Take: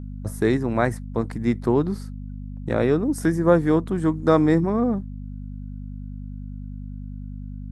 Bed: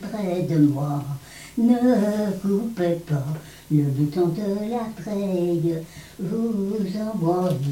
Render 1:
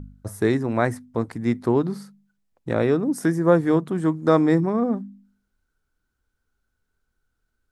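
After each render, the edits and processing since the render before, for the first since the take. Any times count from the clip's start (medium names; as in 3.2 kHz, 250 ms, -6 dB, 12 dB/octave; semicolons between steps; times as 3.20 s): de-hum 50 Hz, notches 5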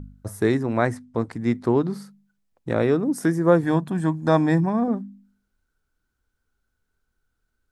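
0.63–1.93 s: low-pass 9.2 kHz; 3.63–4.88 s: comb 1.2 ms, depth 57%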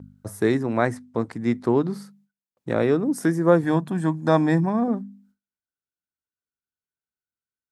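gate with hold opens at -51 dBFS; high-pass 110 Hz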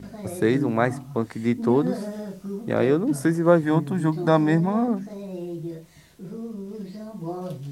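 add bed -10.5 dB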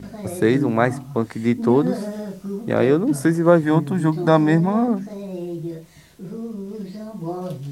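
trim +3.5 dB; peak limiter -1 dBFS, peak gain reduction 1 dB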